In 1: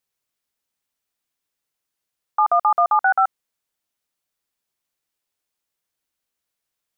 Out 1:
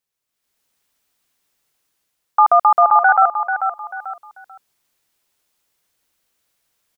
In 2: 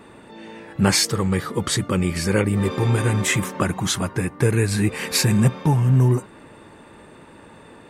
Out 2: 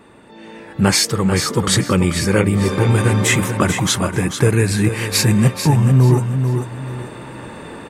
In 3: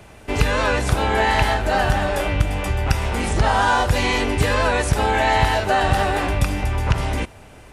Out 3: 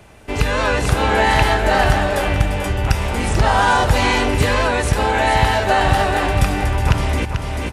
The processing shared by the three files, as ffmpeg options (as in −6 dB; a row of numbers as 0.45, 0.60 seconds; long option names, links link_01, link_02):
-af "aecho=1:1:440|880|1320:0.376|0.0789|0.0166,dynaudnorm=framelen=130:gausssize=7:maxgain=12dB,volume=-1dB"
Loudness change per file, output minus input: +4.0, +4.5, +2.5 LU